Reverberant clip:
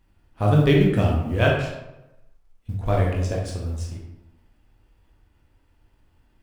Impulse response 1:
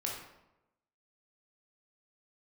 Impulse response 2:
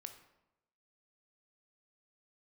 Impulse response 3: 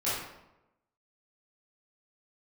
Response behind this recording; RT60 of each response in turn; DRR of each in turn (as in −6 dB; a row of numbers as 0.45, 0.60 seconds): 1; 0.95, 0.95, 0.95 seconds; −2.5, 7.0, −11.5 decibels